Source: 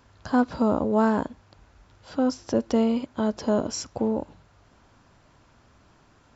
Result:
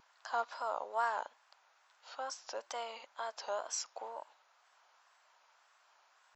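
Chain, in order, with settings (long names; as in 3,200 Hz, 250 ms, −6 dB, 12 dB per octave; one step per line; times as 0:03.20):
high-pass filter 740 Hz 24 dB per octave
tape wow and flutter 100 cents
level −5.5 dB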